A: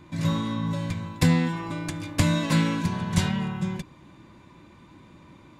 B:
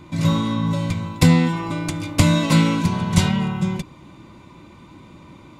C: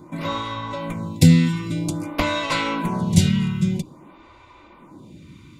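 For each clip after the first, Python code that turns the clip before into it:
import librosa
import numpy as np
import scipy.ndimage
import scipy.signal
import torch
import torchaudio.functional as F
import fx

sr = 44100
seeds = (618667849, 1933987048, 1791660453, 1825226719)

y1 = fx.notch(x, sr, hz=1700.0, q=6.0)
y1 = y1 * 10.0 ** (6.5 / 20.0)
y2 = fx.stagger_phaser(y1, sr, hz=0.51)
y2 = y2 * 10.0 ** (2.0 / 20.0)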